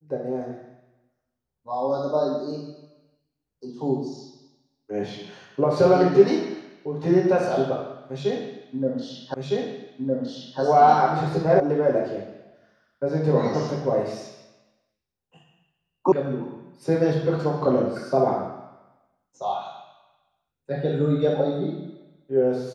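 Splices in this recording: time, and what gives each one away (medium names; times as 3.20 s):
9.34 s: repeat of the last 1.26 s
11.60 s: sound stops dead
16.12 s: sound stops dead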